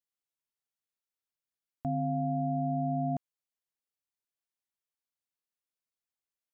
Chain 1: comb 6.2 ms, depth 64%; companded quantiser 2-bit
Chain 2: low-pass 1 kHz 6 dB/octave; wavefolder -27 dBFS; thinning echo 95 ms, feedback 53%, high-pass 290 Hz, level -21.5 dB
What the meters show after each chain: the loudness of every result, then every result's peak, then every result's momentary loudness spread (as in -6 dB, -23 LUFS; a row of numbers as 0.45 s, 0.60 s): -27.5 LUFS, -34.5 LUFS; -24.5 dBFS, -26.5 dBFS; 6 LU, 5 LU